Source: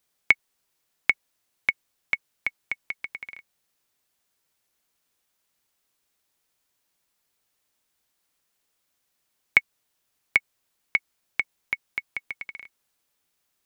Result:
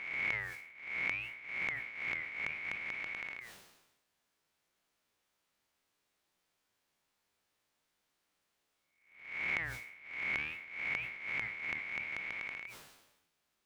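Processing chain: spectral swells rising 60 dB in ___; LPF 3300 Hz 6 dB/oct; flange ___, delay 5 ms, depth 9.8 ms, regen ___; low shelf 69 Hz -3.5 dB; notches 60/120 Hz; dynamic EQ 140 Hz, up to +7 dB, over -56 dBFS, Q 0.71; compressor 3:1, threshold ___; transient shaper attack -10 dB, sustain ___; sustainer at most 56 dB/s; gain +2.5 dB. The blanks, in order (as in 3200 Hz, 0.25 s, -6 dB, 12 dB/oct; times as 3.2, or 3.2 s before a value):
0.60 s, 0.63 Hz, +78%, -38 dBFS, +3 dB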